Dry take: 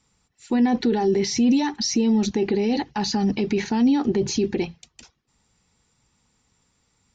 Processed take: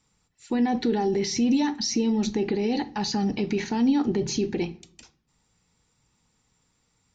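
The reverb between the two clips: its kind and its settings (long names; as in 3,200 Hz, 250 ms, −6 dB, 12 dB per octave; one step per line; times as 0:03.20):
rectangular room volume 410 cubic metres, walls furnished, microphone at 0.51 metres
level −3 dB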